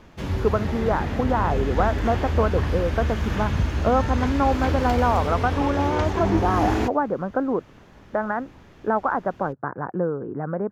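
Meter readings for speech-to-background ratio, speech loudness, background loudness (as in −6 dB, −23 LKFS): 1.0 dB, −25.0 LKFS, −26.0 LKFS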